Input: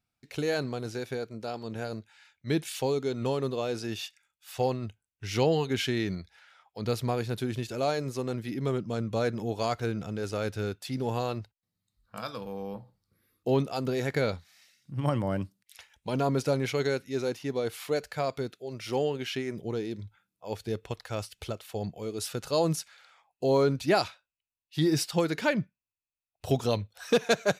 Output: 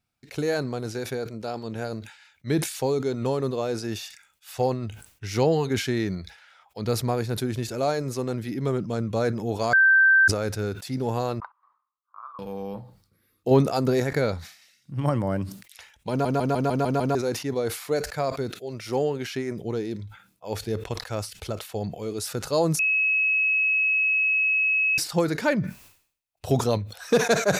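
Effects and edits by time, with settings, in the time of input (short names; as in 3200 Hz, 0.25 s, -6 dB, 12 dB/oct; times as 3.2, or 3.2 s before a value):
9.73–10.28 bleep 1560 Hz -16 dBFS
11.4–12.39 Butterworth band-pass 1100 Hz, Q 4.3
13.51–14 gain +4 dB
16.1 stutter in place 0.15 s, 7 plays
22.79–24.98 bleep 2570 Hz -17 dBFS
whole clip: dynamic EQ 3000 Hz, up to -8 dB, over -53 dBFS, Q 2; sustainer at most 110 dB/s; gain +3.5 dB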